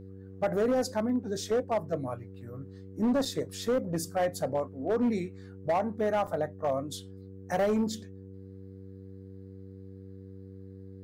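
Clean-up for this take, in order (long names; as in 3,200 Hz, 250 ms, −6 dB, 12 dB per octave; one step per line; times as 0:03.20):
clipped peaks rebuilt −22 dBFS
hum removal 96 Hz, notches 5
repair the gap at 0:03.25/0:06.27, 5.2 ms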